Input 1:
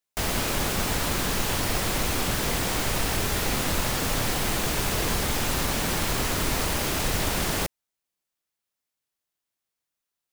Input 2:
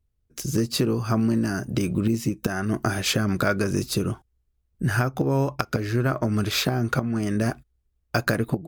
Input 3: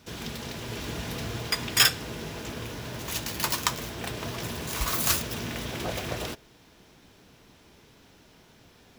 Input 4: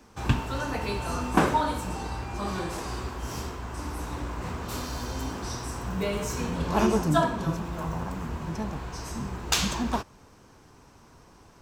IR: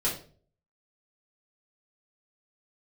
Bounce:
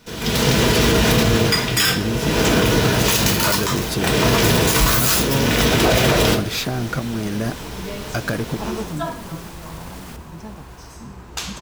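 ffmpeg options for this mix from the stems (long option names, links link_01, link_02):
-filter_complex "[0:a]alimiter=limit=-20.5dB:level=0:latency=1:release=86,adelay=2500,volume=-9.5dB,asplit=2[link_01][link_02];[link_02]volume=-10.5dB[link_03];[1:a]asoftclip=type=tanh:threshold=-16.5dB,volume=1.5dB,asplit=2[link_04][link_05];[2:a]dynaudnorm=framelen=200:gausssize=3:maxgain=15dB,volume=1.5dB,asplit=2[link_06][link_07];[link_07]volume=-7dB[link_08];[3:a]adelay=1850,volume=-3.5dB[link_09];[link_05]apad=whole_len=593642[link_10];[link_09][link_10]sidechaincompress=threshold=-28dB:ratio=8:attack=16:release=183[link_11];[4:a]atrim=start_sample=2205[link_12];[link_08][link_12]afir=irnorm=-1:irlink=0[link_13];[link_03]aecho=0:1:761|1522|2283|3044|3805:1|0.38|0.144|0.0549|0.0209[link_14];[link_01][link_04][link_06][link_11][link_13][link_14]amix=inputs=6:normalize=0,alimiter=limit=-6dB:level=0:latency=1:release=50"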